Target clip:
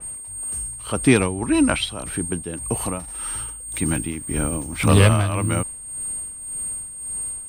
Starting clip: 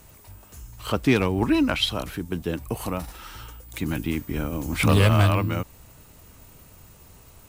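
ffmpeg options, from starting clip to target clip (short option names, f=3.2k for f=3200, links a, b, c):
-af "aeval=exprs='val(0)+0.0447*sin(2*PI*8600*n/s)':c=same,tremolo=f=1.8:d=0.64,adynamicequalizer=threshold=0.00708:dfrequency=3600:dqfactor=0.7:tfrequency=3600:tqfactor=0.7:attack=5:release=100:ratio=0.375:range=2.5:mode=cutabove:tftype=highshelf,volume=4.5dB"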